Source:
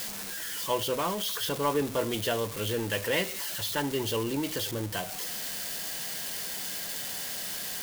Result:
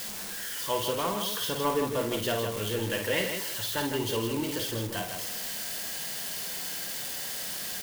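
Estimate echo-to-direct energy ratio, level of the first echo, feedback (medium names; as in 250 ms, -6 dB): -3.0 dB, -6.0 dB, no regular repeats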